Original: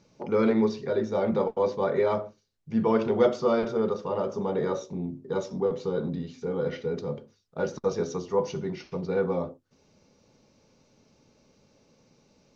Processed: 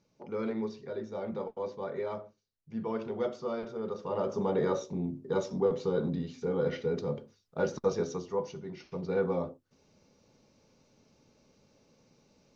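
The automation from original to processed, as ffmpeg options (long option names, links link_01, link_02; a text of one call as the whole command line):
ffmpeg -i in.wav -af "volume=7dB,afade=type=in:start_time=3.81:duration=0.56:silence=0.316228,afade=type=out:start_time=7.79:duration=0.82:silence=0.316228,afade=type=in:start_time=8.61:duration=0.54:silence=0.398107" out.wav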